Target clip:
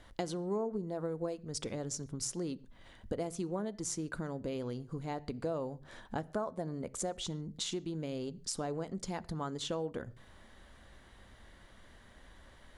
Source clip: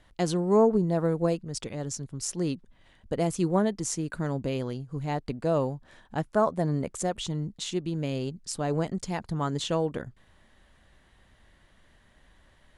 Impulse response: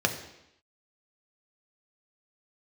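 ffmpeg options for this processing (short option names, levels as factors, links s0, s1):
-filter_complex "[0:a]acompressor=threshold=0.0126:ratio=6,asplit=2[s0][s1];[1:a]atrim=start_sample=2205,afade=t=out:st=0.2:d=0.01,atrim=end_sample=9261[s2];[s1][s2]afir=irnorm=-1:irlink=0,volume=0.0794[s3];[s0][s3]amix=inputs=2:normalize=0,volume=1.33"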